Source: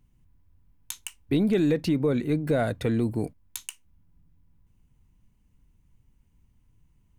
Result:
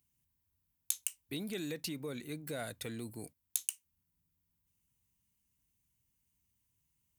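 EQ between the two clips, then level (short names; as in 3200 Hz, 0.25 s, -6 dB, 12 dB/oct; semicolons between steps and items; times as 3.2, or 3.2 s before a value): HPF 63 Hz; pre-emphasis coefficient 0.9; +1.5 dB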